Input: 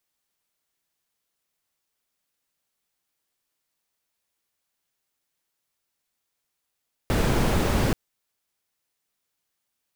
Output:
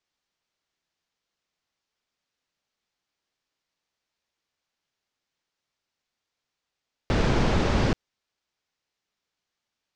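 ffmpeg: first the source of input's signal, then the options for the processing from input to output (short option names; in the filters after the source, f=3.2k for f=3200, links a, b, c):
-f lavfi -i "anoisesrc=c=brown:a=0.394:d=0.83:r=44100:seed=1"
-af "lowpass=f=6.1k:w=0.5412,lowpass=f=6.1k:w=1.3066"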